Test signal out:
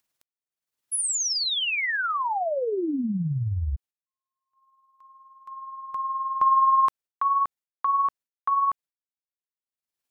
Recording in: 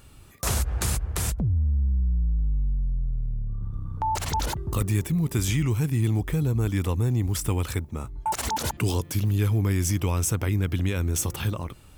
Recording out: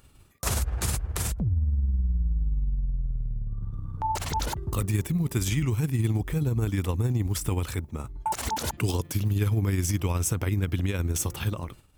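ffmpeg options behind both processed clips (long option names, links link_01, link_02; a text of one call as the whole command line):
ffmpeg -i in.wav -af "agate=range=-33dB:threshold=-41dB:ratio=3:detection=peak,acompressor=mode=upward:threshold=-45dB:ratio=2.5,tremolo=f=19:d=0.41" out.wav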